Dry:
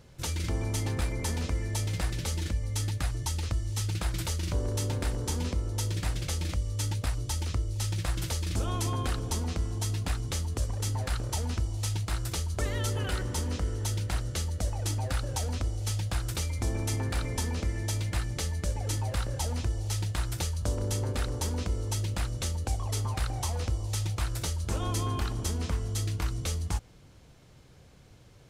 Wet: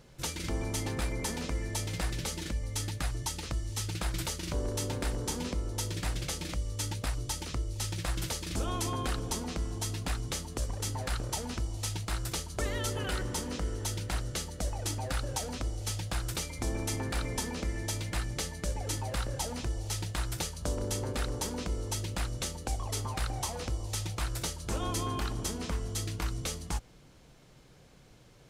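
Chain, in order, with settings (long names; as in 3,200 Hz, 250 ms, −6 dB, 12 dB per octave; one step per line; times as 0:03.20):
parametric band 84 Hz −13 dB 0.58 octaves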